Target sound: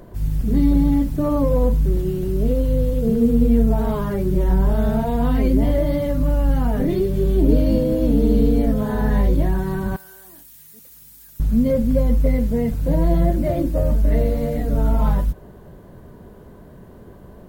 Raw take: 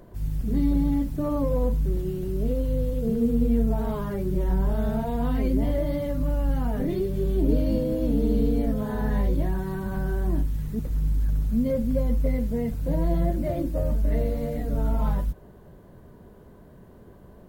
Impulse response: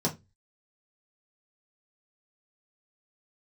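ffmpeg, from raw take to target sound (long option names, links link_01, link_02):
-filter_complex "[0:a]asettb=1/sr,asplit=3[link_01][link_02][link_03];[link_01]atrim=end=9.964[link_04];[link_02]atrim=start=9.96:end=11.4,asetpts=PTS-STARTPTS,afade=type=in:duration=0.004:curve=qsin,afade=type=out:start_time=1.436:duration=0.004:curve=qsin,aderivative[link_05];[link_03]atrim=start=11.396[link_06];[link_04][link_05]acrossfade=duration=0.004:curve1=hsin:curve2=qsin[link_07];[link_07][link_06]acrossfade=duration=0.004:curve1=qsin:curve2=hsin,volume=6.5dB"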